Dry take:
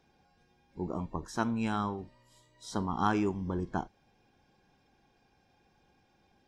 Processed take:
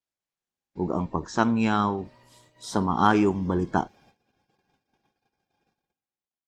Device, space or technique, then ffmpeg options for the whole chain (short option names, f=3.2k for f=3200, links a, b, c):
video call: -af "highpass=f=110:p=1,dynaudnorm=f=110:g=11:m=10dB,agate=range=-33dB:threshold=-56dB:ratio=16:detection=peak" -ar 48000 -c:a libopus -b:a 20k